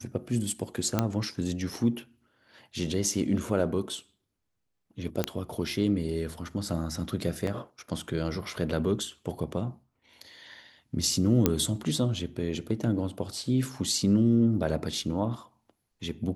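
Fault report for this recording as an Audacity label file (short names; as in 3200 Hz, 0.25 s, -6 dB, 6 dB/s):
0.990000	0.990000	pop -10 dBFS
5.240000	5.240000	pop -11 dBFS
7.470000	7.470000	gap 3.2 ms
11.460000	11.460000	pop -7 dBFS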